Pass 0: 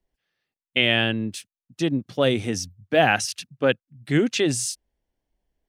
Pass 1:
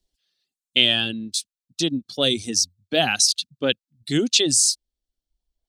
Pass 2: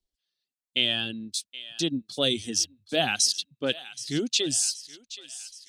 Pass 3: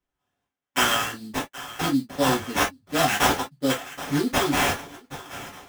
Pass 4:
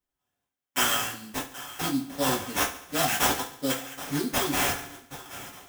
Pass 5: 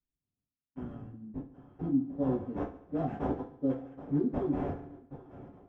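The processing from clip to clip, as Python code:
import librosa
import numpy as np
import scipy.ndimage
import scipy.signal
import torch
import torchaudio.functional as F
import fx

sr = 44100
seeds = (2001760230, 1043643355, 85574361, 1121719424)

y1 = fx.dereverb_blind(x, sr, rt60_s=1.2)
y1 = fx.graphic_eq(y1, sr, hz=(125, 500, 1000, 2000, 4000, 8000), db=(-7, -4, -7, -9, 12, 7))
y1 = y1 * librosa.db_to_amplitude(2.5)
y2 = fx.rider(y1, sr, range_db=10, speed_s=2.0)
y2 = fx.echo_thinned(y2, sr, ms=774, feedback_pct=59, hz=1200.0, wet_db=-15)
y2 = y2 * librosa.db_to_amplitude(-6.5)
y3 = fx.sample_hold(y2, sr, seeds[0], rate_hz=4500.0, jitter_pct=20)
y3 = fx.rev_gated(y3, sr, seeds[1], gate_ms=80, shape='falling', drr_db=-7.0)
y3 = y3 * librosa.db_to_amplitude(-4.5)
y4 = fx.high_shelf(y3, sr, hz=6100.0, db=9.5)
y4 = fx.echo_feedback(y4, sr, ms=70, feedback_pct=55, wet_db=-13.5)
y4 = y4 * librosa.db_to_amplitude(-5.5)
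y5 = fx.filter_sweep_lowpass(y4, sr, from_hz=210.0, to_hz=420.0, start_s=1.13, end_s=2.43, q=0.91)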